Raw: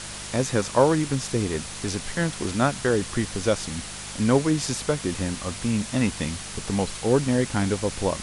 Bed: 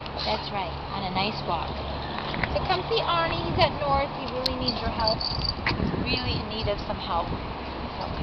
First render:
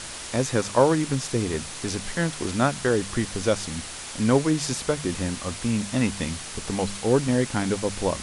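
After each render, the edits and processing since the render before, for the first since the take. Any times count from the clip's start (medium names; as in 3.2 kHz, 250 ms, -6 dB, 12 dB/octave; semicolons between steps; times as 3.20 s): de-hum 50 Hz, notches 4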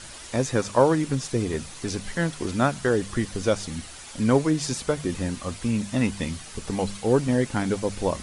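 noise reduction 8 dB, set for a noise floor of -37 dBFS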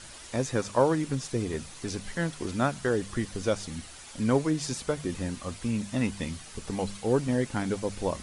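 trim -4.5 dB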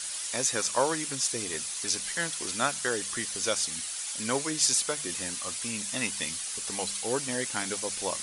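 tilt EQ +4.5 dB/octave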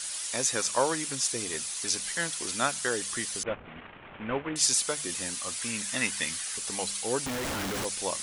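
3.43–4.56 s: CVSD coder 16 kbps; 5.57–6.58 s: peaking EQ 1.7 kHz +6.5 dB 0.83 oct; 7.26–7.85 s: Schmitt trigger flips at -32.5 dBFS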